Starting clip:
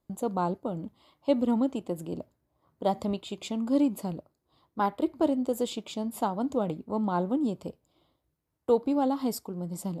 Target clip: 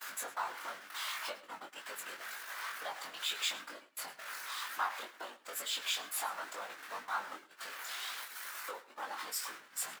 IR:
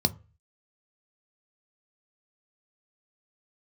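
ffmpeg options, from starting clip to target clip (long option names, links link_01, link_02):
-filter_complex "[0:a]aeval=exprs='val(0)+0.5*0.0168*sgn(val(0))':channel_layout=same,afftfilt=real='hypot(re,im)*cos(2*PI*random(0))':imag='hypot(re,im)*sin(2*PI*random(1))':win_size=512:overlap=0.75,acompressor=threshold=-35dB:ratio=5,highpass=frequency=1500:width_type=q:width=2.4,flanger=delay=9.2:depth=8.7:regen=87:speed=0.84:shape=sinusoidal,agate=range=-24dB:threshold=-58dB:ratio=16:detection=peak,flanger=delay=19:depth=3.5:speed=2.1,asplit=2[link_01][link_02];[link_02]aecho=0:1:107:0.126[link_03];[link_01][link_03]amix=inputs=2:normalize=0,volume=15dB"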